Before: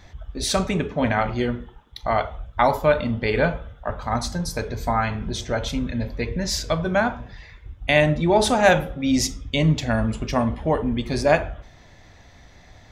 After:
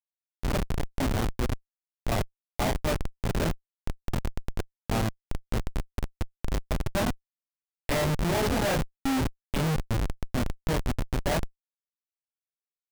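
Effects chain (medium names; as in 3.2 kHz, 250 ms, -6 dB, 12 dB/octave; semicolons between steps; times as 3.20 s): chorus voices 2, 0.28 Hz, delay 25 ms, depth 1.6 ms; Schmitt trigger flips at -20 dBFS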